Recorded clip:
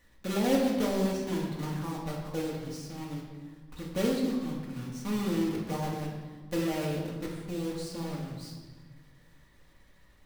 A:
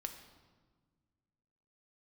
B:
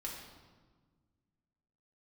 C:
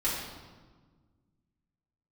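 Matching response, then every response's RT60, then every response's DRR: B; 1.5, 1.5, 1.5 s; 5.0, -4.0, -9.5 dB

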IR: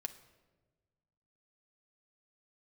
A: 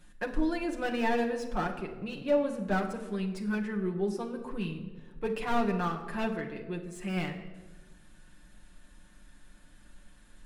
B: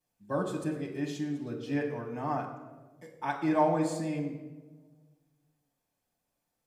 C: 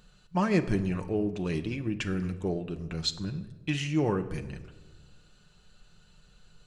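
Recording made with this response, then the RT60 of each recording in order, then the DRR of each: C; 1.3, 1.3, 1.3 s; -0.5, -9.0, 6.0 dB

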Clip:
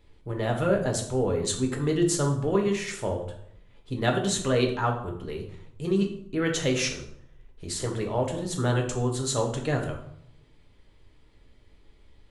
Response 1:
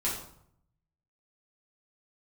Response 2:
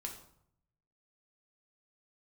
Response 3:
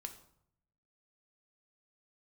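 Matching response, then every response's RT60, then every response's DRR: 2; 0.70, 0.70, 0.70 s; -7.5, 1.0, 6.0 dB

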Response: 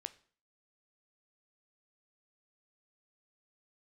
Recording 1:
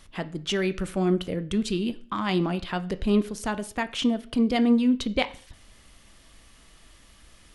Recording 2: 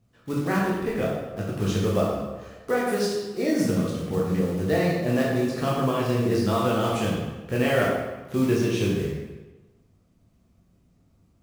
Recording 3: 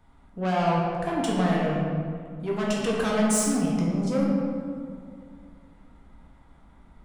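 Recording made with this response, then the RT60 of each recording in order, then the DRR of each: 1; 0.45, 1.2, 2.2 s; 12.0, -5.0, -4.0 dB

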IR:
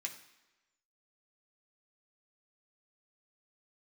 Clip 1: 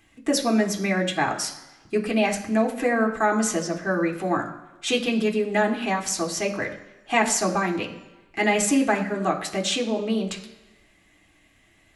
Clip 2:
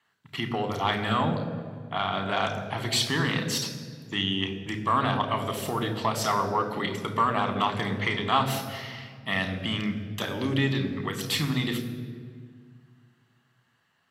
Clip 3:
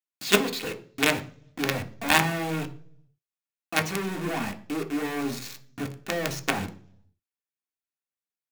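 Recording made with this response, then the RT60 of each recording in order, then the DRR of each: 1; 1.1, 1.9, 0.50 s; 0.5, 7.0, 4.0 dB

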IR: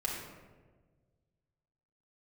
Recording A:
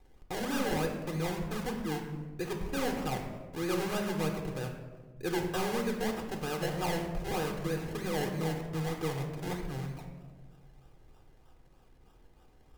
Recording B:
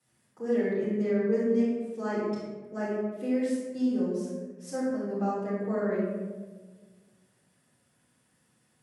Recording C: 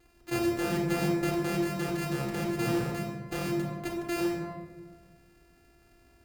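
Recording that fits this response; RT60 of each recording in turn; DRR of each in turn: C; 1.5, 1.4, 1.4 s; 3.0, -10.5, -2.5 dB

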